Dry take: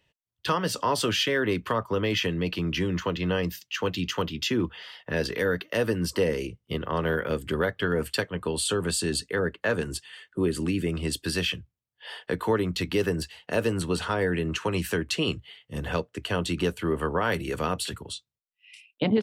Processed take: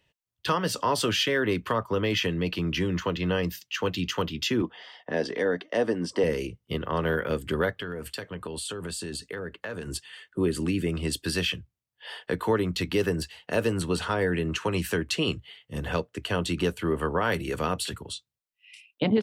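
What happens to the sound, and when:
4.62–6.24 s: cabinet simulation 210–7600 Hz, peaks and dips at 260 Hz +4 dB, 720 Hz +7 dB, 1.4 kHz -6 dB, 2.6 kHz -7 dB, 4.2 kHz -7 dB, 6.8 kHz -6 dB
7.79–9.88 s: compression, threshold -31 dBFS

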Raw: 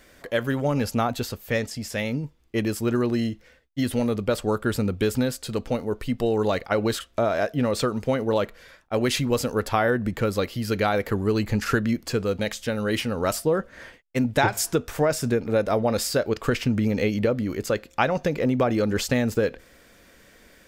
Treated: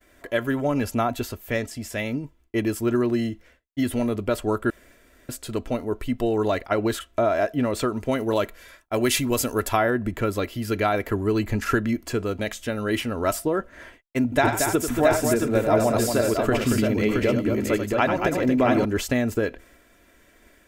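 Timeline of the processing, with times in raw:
4.70–5.29 s: room tone
8.11–9.77 s: treble shelf 4.2 kHz +9.5 dB
14.23–18.85 s: multi-tap echo 90/230/672 ms -8/-5.5/-4 dB
whole clip: expander -49 dBFS; peaking EQ 4.7 kHz -6.5 dB 0.82 oct; comb 3 ms, depth 47%

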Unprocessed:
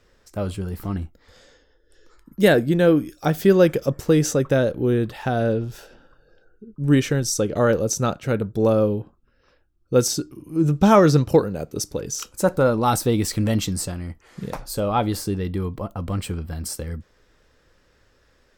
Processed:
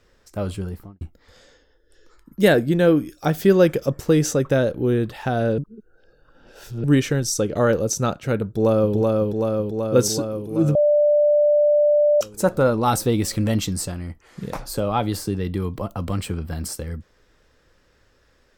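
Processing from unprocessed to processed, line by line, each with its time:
0.61–1.01 s: studio fade out
5.58–6.84 s: reverse
8.45–8.94 s: echo throw 380 ms, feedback 75%, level -2 dB
10.75–12.21 s: bleep 591 Hz -13 dBFS
14.55–16.72 s: three bands compressed up and down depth 40%

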